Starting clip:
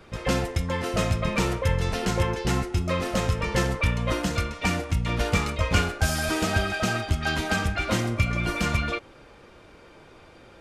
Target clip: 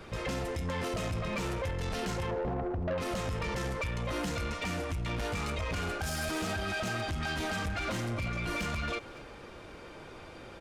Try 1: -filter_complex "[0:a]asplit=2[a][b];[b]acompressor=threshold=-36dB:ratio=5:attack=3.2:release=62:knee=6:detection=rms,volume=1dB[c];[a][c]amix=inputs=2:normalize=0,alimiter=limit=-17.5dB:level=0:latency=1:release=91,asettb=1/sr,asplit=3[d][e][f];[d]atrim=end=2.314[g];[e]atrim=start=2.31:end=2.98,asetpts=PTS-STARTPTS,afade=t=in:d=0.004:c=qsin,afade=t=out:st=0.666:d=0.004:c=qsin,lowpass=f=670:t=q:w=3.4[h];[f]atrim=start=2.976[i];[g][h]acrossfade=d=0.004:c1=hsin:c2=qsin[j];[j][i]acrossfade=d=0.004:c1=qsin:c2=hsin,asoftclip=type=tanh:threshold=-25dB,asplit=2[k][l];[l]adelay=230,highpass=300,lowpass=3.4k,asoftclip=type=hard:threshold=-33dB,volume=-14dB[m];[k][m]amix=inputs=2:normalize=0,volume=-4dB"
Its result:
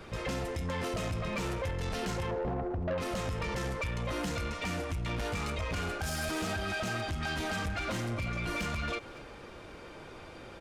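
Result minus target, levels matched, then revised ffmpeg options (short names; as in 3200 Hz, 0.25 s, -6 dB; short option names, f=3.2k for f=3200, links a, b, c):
compressor: peak gain reduction +8 dB
-filter_complex "[0:a]asplit=2[a][b];[b]acompressor=threshold=-26dB:ratio=5:attack=3.2:release=62:knee=6:detection=rms,volume=1dB[c];[a][c]amix=inputs=2:normalize=0,alimiter=limit=-17.5dB:level=0:latency=1:release=91,asettb=1/sr,asplit=3[d][e][f];[d]atrim=end=2.314[g];[e]atrim=start=2.31:end=2.98,asetpts=PTS-STARTPTS,afade=t=in:d=0.004:c=qsin,afade=t=out:st=0.666:d=0.004:c=qsin,lowpass=f=670:t=q:w=3.4[h];[f]atrim=start=2.976[i];[g][h]acrossfade=d=0.004:c1=hsin:c2=qsin[j];[j][i]acrossfade=d=0.004:c1=qsin:c2=hsin,asoftclip=type=tanh:threshold=-25dB,asplit=2[k][l];[l]adelay=230,highpass=300,lowpass=3.4k,asoftclip=type=hard:threshold=-33dB,volume=-14dB[m];[k][m]amix=inputs=2:normalize=0,volume=-4dB"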